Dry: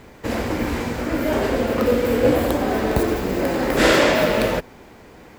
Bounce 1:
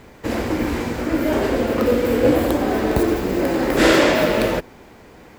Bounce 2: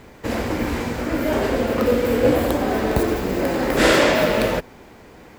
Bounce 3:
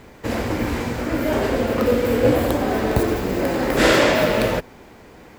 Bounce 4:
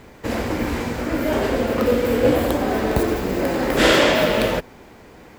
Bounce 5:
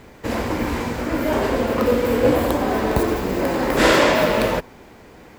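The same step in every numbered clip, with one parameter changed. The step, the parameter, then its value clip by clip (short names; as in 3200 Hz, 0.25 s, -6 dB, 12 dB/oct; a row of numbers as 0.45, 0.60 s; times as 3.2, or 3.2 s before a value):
dynamic EQ, frequency: 330, 9000, 110, 3200, 1000 Hz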